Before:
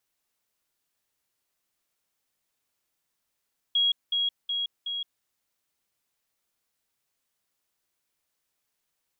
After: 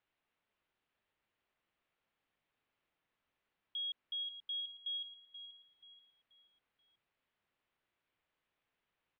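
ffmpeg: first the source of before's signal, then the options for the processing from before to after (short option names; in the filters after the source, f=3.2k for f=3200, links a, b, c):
-f lavfi -i "aevalsrc='pow(10,(-20-3*floor(t/0.37))/20)*sin(2*PI*3300*t)*clip(min(mod(t,0.37),0.17-mod(t,0.37))/0.005,0,1)':d=1.48:s=44100"
-filter_complex "[0:a]lowpass=f=3.1k:w=0.5412,lowpass=f=3.1k:w=1.3066,alimiter=level_in=12dB:limit=-24dB:level=0:latency=1:release=16,volume=-12dB,asplit=2[a][b];[b]aecho=0:1:482|964|1446|1928:0.282|0.101|0.0365|0.0131[c];[a][c]amix=inputs=2:normalize=0"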